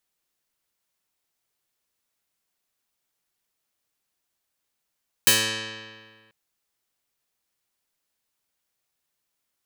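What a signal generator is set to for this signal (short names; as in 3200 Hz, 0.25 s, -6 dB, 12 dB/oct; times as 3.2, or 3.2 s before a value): plucked string A2, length 1.04 s, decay 1.74 s, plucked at 0.16, medium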